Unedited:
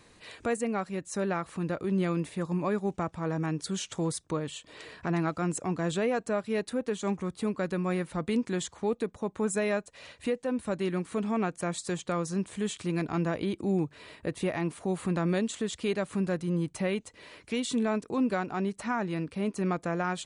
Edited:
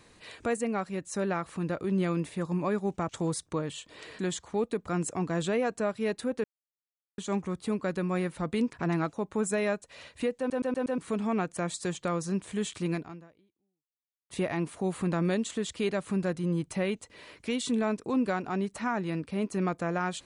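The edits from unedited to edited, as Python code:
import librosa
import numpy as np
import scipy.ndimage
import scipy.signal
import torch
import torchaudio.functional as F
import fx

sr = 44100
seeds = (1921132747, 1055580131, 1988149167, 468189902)

y = fx.edit(x, sr, fx.cut(start_s=3.09, length_s=0.78),
    fx.swap(start_s=4.97, length_s=0.4, other_s=8.48, other_length_s=0.69),
    fx.insert_silence(at_s=6.93, length_s=0.74),
    fx.stutter_over(start_s=10.42, slice_s=0.12, count=5),
    fx.fade_out_span(start_s=12.97, length_s=1.37, curve='exp'), tone=tone)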